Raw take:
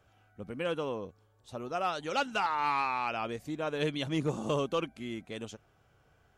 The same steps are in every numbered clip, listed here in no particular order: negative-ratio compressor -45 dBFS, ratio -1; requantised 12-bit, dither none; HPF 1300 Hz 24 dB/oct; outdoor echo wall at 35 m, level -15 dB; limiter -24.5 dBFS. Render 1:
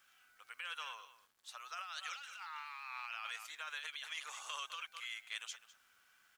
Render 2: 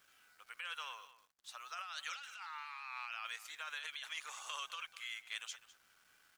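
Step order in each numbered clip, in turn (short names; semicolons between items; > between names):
outdoor echo > limiter > HPF > negative-ratio compressor > requantised; limiter > HPF > requantised > negative-ratio compressor > outdoor echo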